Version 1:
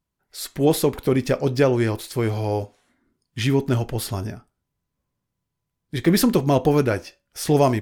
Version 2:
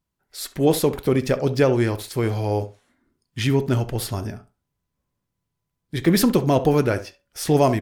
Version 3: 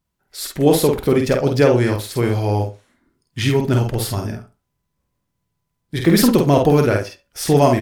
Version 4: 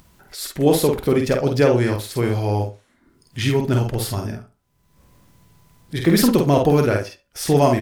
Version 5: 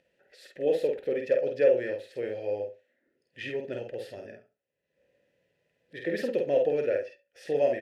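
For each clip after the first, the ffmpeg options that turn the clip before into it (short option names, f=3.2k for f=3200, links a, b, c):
-filter_complex "[0:a]asplit=2[a][b];[b]adelay=67,lowpass=f=1.9k:p=1,volume=-13.5dB,asplit=2[c][d];[d]adelay=67,lowpass=f=1.9k:p=1,volume=0.18[e];[a][c][e]amix=inputs=3:normalize=0"
-filter_complex "[0:a]asplit=2[a][b];[b]adelay=49,volume=-4dB[c];[a][c]amix=inputs=2:normalize=0,volume=3dB"
-af "acompressor=mode=upward:threshold=-31dB:ratio=2.5,volume=-2dB"
-filter_complex "[0:a]asplit=3[a][b][c];[a]bandpass=f=530:t=q:w=8,volume=0dB[d];[b]bandpass=f=1.84k:t=q:w=8,volume=-6dB[e];[c]bandpass=f=2.48k:t=q:w=8,volume=-9dB[f];[d][e][f]amix=inputs=3:normalize=0"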